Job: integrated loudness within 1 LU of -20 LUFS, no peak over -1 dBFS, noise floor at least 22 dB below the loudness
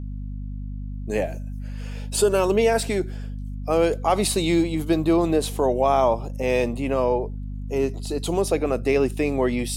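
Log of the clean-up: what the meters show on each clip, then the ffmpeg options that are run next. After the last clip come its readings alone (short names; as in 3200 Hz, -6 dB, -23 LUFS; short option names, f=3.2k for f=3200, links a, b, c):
hum 50 Hz; harmonics up to 250 Hz; hum level -29 dBFS; loudness -22.5 LUFS; peak -7.5 dBFS; loudness target -20.0 LUFS
-> -af "bandreject=f=50:t=h:w=6,bandreject=f=100:t=h:w=6,bandreject=f=150:t=h:w=6,bandreject=f=200:t=h:w=6,bandreject=f=250:t=h:w=6"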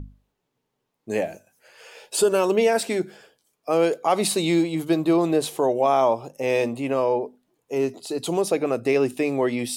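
hum none; loudness -23.0 LUFS; peak -8.5 dBFS; loudness target -20.0 LUFS
-> -af "volume=3dB"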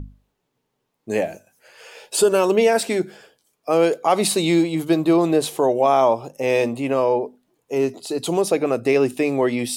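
loudness -20.0 LUFS; peak -5.5 dBFS; noise floor -75 dBFS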